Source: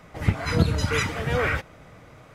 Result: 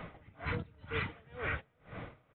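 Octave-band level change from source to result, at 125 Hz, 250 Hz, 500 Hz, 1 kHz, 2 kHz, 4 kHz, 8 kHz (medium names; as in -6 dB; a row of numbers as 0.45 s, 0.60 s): -18.0 dB, -17.5 dB, -15.0 dB, -13.0 dB, -11.5 dB, -16.0 dB, under -40 dB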